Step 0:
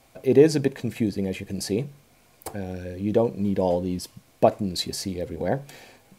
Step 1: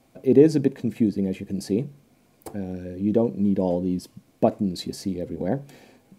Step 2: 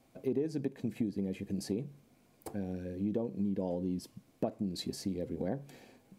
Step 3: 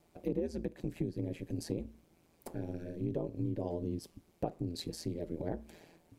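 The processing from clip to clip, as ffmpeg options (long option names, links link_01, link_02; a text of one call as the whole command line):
ffmpeg -i in.wav -af "equalizer=frequency=240:width_type=o:width=2:gain=11.5,volume=-7dB" out.wav
ffmpeg -i in.wav -af "acompressor=threshold=-24dB:ratio=6,volume=-6dB" out.wav
ffmpeg -i in.wav -af "aeval=exprs='val(0)*sin(2*PI*83*n/s)':channel_layout=same,volume=1dB" out.wav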